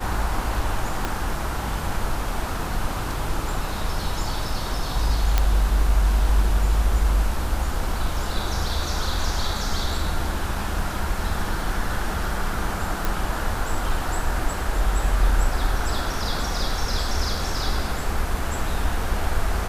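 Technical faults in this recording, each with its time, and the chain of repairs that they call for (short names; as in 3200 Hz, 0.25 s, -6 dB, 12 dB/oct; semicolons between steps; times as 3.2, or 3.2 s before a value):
1.05 pop
5.38 pop -5 dBFS
13.05 pop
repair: de-click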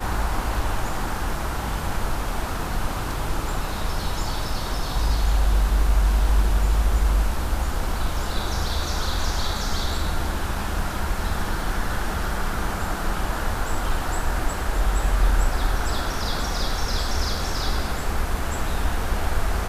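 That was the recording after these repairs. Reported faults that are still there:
1.05 pop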